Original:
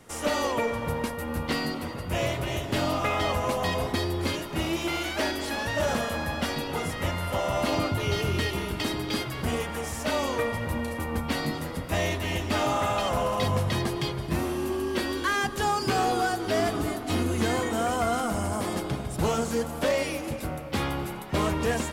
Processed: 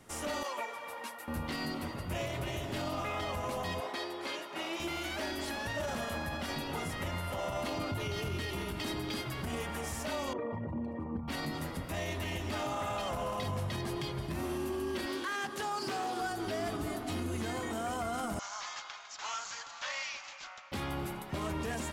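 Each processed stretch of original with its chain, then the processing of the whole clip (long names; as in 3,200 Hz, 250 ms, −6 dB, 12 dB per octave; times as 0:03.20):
0:00.43–0:01.28: high-pass filter 600 Hz + string-ensemble chorus
0:03.80–0:04.80: high-pass filter 480 Hz + high-shelf EQ 7,800 Hz −12 dB
0:10.33–0:11.28: spectral envelope exaggerated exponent 2 + band-pass filter 120–4,600 Hz
0:15.06–0:16.21: Bessel high-pass filter 230 Hz + highs frequency-modulated by the lows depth 0.27 ms
0:18.39–0:20.72: high-pass filter 1,000 Hz 24 dB per octave + bad sample-rate conversion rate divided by 3×, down none, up filtered
whole clip: notch filter 480 Hz, Q 12; brickwall limiter −23 dBFS; level −4.5 dB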